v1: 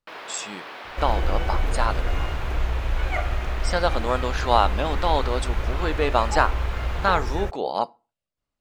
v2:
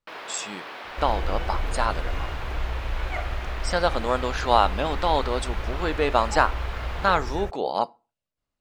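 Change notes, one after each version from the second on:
second sound -4.5 dB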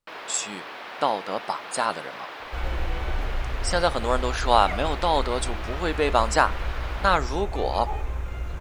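speech: remove air absorption 55 m; second sound: entry +1.55 s

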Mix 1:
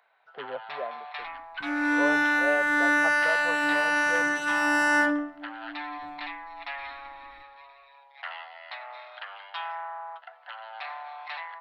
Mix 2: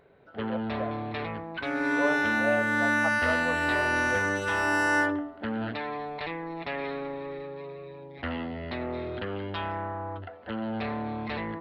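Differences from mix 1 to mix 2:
first sound: remove steep high-pass 720 Hz 48 dB/oct; second sound: send -9.0 dB

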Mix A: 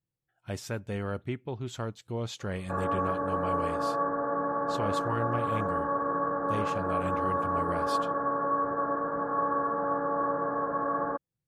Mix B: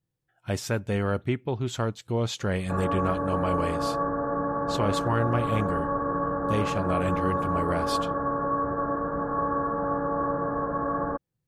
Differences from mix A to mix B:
speech +7.0 dB; background: remove HPF 390 Hz 6 dB/oct

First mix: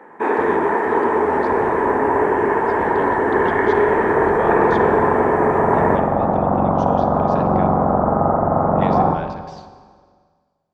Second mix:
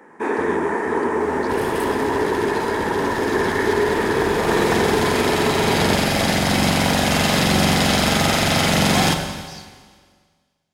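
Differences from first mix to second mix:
second sound: remove elliptic low-pass 1200 Hz, stop band 60 dB; master: add EQ curve 260 Hz 0 dB, 750 Hz -7 dB, 3500 Hz +2 dB, 5200 Hz +10 dB

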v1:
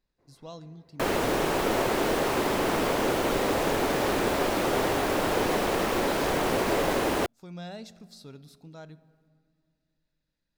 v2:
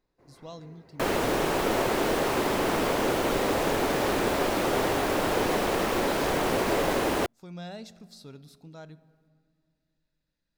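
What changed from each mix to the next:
first sound +9.0 dB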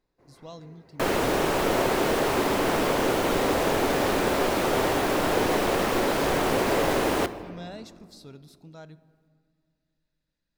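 second sound: send on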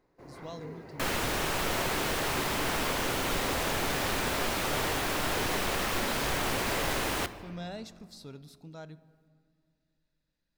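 first sound +10.0 dB; second sound: add bell 410 Hz -11.5 dB 2.7 oct

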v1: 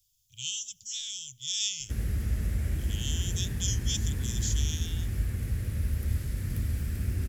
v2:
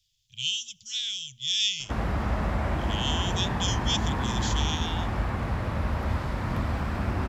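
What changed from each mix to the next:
master: remove EQ curve 100 Hz 0 dB, 170 Hz -7 dB, 300 Hz -10 dB, 440 Hz -10 dB, 690 Hz -24 dB, 1000 Hz -29 dB, 1700 Hz -11 dB, 4000 Hz -7 dB, 11000 Hz +14 dB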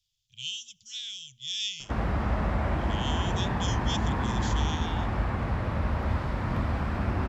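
speech -6.5 dB; background: add LPF 3800 Hz 6 dB/oct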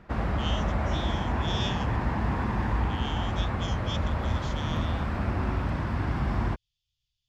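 speech: add air absorption 130 m; background: entry -1.80 s

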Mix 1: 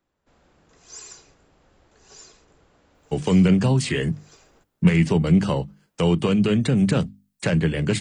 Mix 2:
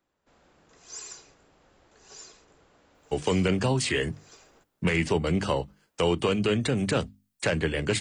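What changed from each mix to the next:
speech: add bell 170 Hz -12 dB 1.1 oct; background: add low shelf 190 Hz -6.5 dB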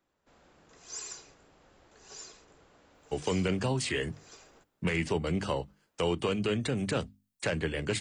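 speech -5.0 dB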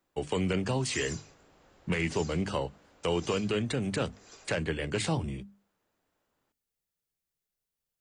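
speech: entry -2.95 s

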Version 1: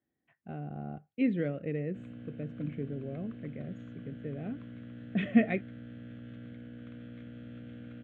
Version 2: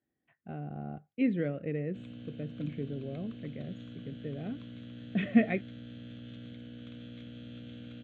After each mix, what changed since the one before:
background: add resonant high shelf 2600 Hz +10.5 dB, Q 1.5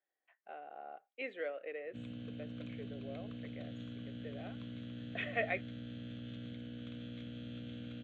speech: add HPF 540 Hz 24 dB/oct

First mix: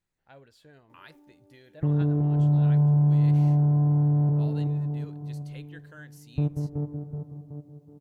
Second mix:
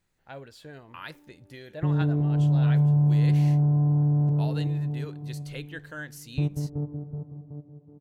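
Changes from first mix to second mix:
speech +9.5 dB; background: add air absorption 480 m

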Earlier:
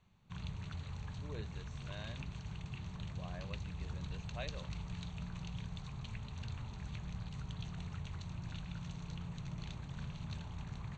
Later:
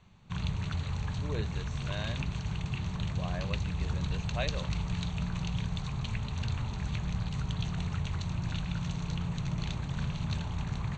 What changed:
speech +10.0 dB; background +10.5 dB

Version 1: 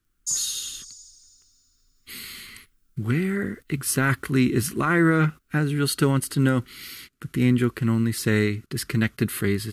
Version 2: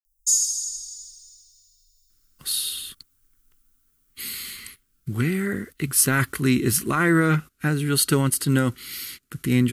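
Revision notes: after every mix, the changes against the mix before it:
speech: entry +2.10 s; master: add high shelf 5000 Hz +9.5 dB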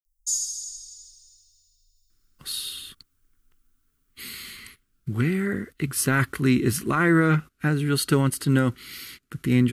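master: add high shelf 5000 Hz -9.5 dB

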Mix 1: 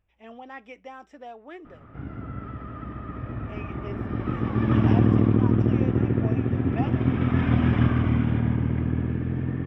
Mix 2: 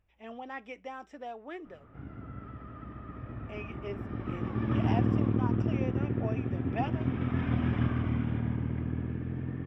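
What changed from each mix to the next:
background -8.0 dB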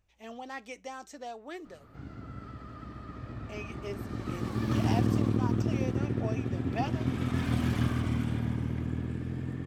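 background: remove air absorption 140 m; master: remove polynomial smoothing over 25 samples

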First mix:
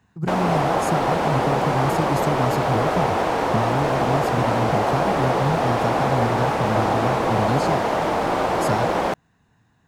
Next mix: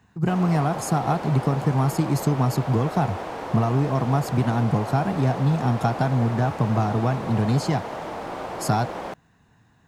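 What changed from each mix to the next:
speech +3.0 dB; background -11.0 dB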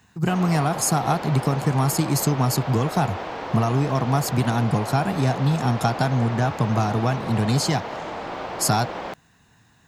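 background: add air absorption 160 m; master: add high shelf 2200 Hz +11 dB

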